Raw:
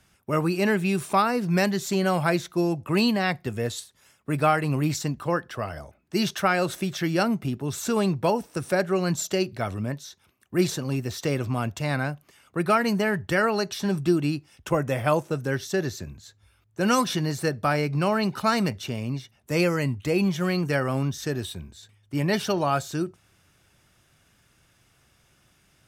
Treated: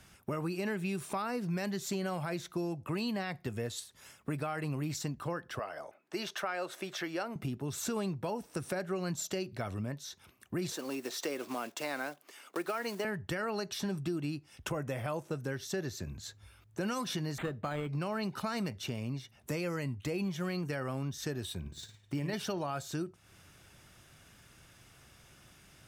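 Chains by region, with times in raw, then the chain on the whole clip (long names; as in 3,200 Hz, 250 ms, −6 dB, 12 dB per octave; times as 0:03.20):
0:05.59–0:07.36: high-pass filter 440 Hz + high-shelf EQ 3,400 Hz −8.5 dB
0:10.72–0:13.05: one scale factor per block 5 bits + high-pass filter 280 Hz 24 dB per octave
0:17.38–0:17.89: high-shelf EQ 5,100 Hz +7.5 dB + linearly interpolated sample-rate reduction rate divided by 8×
0:21.60–0:22.34: running median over 3 samples + flutter between parallel walls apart 9.5 metres, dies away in 0.42 s + transient designer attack +2 dB, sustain −6 dB
whole clip: brickwall limiter −15 dBFS; downward compressor 3 to 1, threshold −41 dBFS; level +3.5 dB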